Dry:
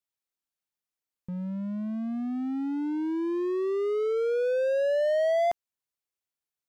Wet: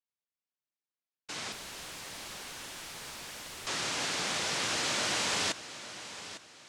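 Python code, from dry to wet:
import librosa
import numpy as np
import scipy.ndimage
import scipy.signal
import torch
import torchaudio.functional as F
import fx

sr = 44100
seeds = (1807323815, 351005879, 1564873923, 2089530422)

y = fx.noise_vocoder(x, sr, seeds[0], bands=1)
y = fx.overflow_wrap(y, sr, gain_db=29.5, at=(1.52, 3.67))
y = fx.air_absorb(y, sr, metres=52.0)
y = fx.echo_feedback(y, sr, ms=854, feedback_pct=34, wet_db=-13.5)
y = F.gain(torch.from_numpy(y), -5.0).numpy()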